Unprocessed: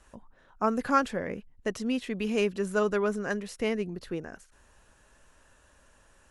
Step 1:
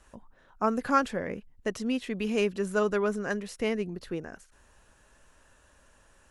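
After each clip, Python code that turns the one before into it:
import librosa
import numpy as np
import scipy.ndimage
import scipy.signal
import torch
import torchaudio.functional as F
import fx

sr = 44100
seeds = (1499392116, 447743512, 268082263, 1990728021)

y = fx.end_taper(x, sr, db_per_s=580.0)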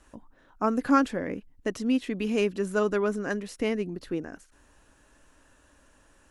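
y = fx.peak_eq(x, sr, hz=290.0, db=10.0, octaves=0.36)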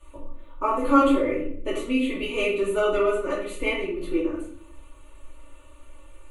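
y = fx.fixed_phaser(x, sr, hz=1100.0, stages=8)
y = y + 0.75 * np.pad(y, (int(3.4 * sr / 1000.0), 0))[:len(y)]
y = fx.room_shoebox(y, sr, seeds[0], volume_m3=99.0, walls='mixed', distance_m=1.7)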